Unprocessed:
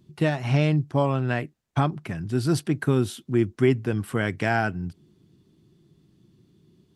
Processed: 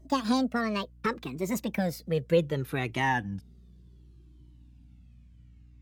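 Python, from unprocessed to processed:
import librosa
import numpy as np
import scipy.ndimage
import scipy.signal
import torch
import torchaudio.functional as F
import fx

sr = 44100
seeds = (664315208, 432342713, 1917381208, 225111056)

y = fx.speed_glide(x, sr, from_pct=180, to_pct=59)
y = fx.add_hum(y, sr, base_hz=60, snr_db=25)
y = fx.comb_cascade(y, sr, direction='falling', hz=0.67)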